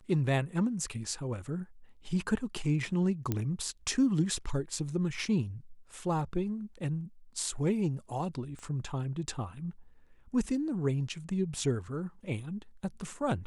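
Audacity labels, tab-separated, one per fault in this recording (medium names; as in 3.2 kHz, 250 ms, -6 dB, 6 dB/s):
3.320000	3.320000	pop -17 dBFS
8.590000	8.590000	pop -34 dBFS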